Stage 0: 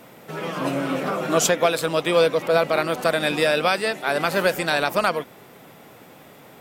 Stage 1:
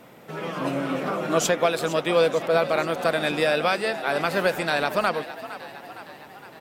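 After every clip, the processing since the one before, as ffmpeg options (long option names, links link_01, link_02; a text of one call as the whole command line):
ffmpeg -i in.wav -filter_complex "[0:a]highshelf=frequency=5400:gain=-5.5,asplit=7[link_01][link_02][link_03][link_04][link_05][link_06][link_07];[link_02]adelay=461,afreqshift=56,volume=-14.5dB[link_08];[link_03]adelay=922,afreqshift=112,volume=-18.9dB[link_09];[link_04]adelay=1383,afreqshift=168,volume=-23.4dB[link_10];[link_05]adelay=1844,afreqshift=224,volume=-27.8dB[link_11];[link_06]adelay=2305,afreqshift=280,volume=-32.2dB[link_12];[link_07]adelay=2766,afreqshift=336,volume=-36.7dB[link_13];[link_01][link_08][link_09][link_10][link_11][link_12][link_13]amix=inputs=7:normalize=0,volume=-2dB" out.wav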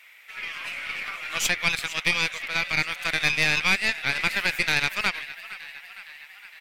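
ffmpeg -i in.wav -af "highpass=frequency=2200:width_type=q:width=4,aeval=exprs='0.422*(cos(1*acos(clip(val(0)/0.422,-1,1)))-cos(1*PI/2))+0.0841*(cos(4*acos(clip(val(0)/0.422,-1,1)))-cos(4*PI/2))':channel_layout=same,volume=-1.5dB" out.wav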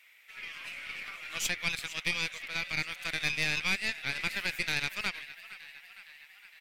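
ffmpeg -i in.wav -af "equalizer=frequency=970:width_type=o:width=2:gain=-5,volume=-6.5dB" out.wav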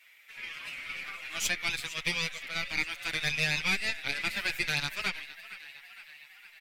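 ffmpeg -i in.wav -filter_complex "[0:a]asplit=2[link_01][link_02];[link_02]adelay=7,afreqshift=0.73[link_03];[link_01][link_03]amix=inputs=2:normalize=1,volume=4.5dB" out.wav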